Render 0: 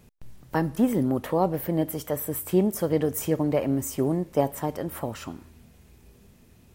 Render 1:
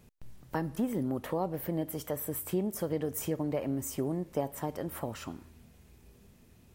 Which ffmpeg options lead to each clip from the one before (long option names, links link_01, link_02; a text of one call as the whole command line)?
ffmpeg -i in.wav -af "acompressor=threshold=-27dB:ratio=2,volume=-4dB" out.wav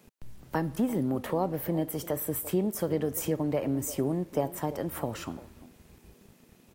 ffmpeg -i in.wav -filter_complex "[0:a]acrossover=split=160|1100|2200[link_01][link_02][link_03][link_04];[link_01]aeval=exprs='val(0)*gte(abs(val(0)),0.0015)':channel_layout=same[link_05];[link_02]aecho=1:1:345:0.188[link_06];[link_05][link_06][link_03][link_04]amix=inputs=4:normalize=0,volume=3.5dB" out.wav